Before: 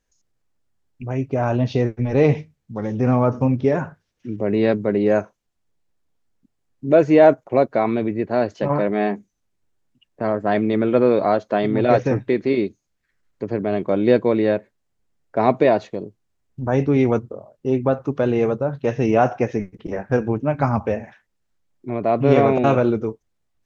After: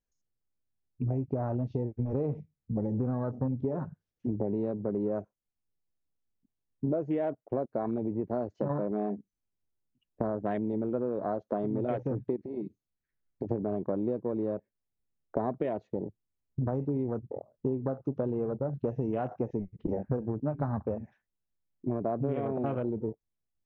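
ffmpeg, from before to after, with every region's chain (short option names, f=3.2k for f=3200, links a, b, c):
-filter_complex "[0:a]asettb=1/sr,asplit=3[a][b][c];[a]atrim=end=12.364[d];[b]atrim=start=12.36:end=13.49,asetpts=PTS-STARTPTS,afade=t=in:d=0.004:c=qsin,afade=t=out:st=1.126:d=0.004:c=qsin,lowpass=4.9k,acompressor=threshold=-29dB:ratio=16:attack=3.2:release=140:knee=1:detection=peak[e];[c]atrim=start=13.486[f];[d][e]acrossfade=d=0.004:c1=hsin:c2=qsin[g];[g][f]acrossfade=d=0.004:c1=qsin:c2=hsin,afwtdn=0.0447,tiltshelf=f=690:g=4,acompressor=threshold=-27dB:ratio=16"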